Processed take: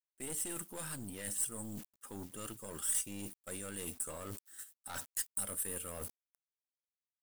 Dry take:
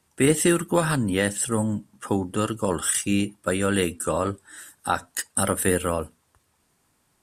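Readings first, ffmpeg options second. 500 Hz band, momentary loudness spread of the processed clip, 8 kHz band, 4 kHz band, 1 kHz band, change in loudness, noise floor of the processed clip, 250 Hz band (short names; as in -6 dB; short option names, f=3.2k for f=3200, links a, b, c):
-24.0 dB, 12 LU, -10.0 dB, -17.0 dB, -22.5 dB, -15.0 dB, under -85 dBFS, -23.0 dB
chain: -af "acrusher=bits=7:mix=0:aa=0.000001,agate=range=-14dB:threshold=-39dB:ratio=16:detection=peak,areverse,acompressor=threshold=-34dB:ratio=6,areverse,aeval=exprs='(tanh(44.7*val(0)+0.55)-tanh(0.55))/44.7':c=same,aemphasis=mode=production:type=75kf,volume=-6dB"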